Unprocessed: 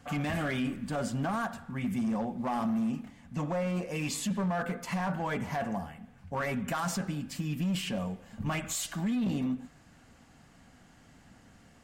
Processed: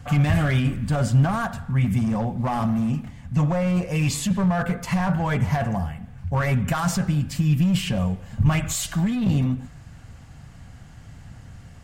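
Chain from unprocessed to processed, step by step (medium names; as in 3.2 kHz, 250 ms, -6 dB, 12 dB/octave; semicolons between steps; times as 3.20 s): resonant low shelf 170 Hz +11 dB, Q 1.5; trim +7 dB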